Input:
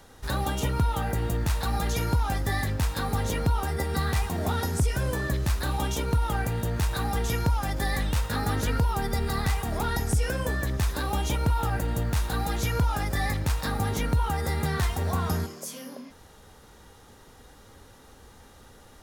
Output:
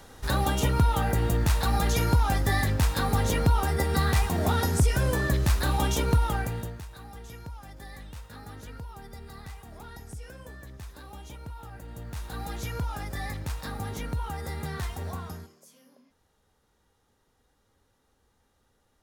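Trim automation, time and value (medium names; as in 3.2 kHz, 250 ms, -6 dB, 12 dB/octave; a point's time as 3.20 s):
6.14 s +2.5 dB
6.62 s -5 dB
6.85 s -16.5 dB
11.74 s -16.5 dB
12.45 s -7 dB
15.07 s -7 dB
15.62 s -18.5 dB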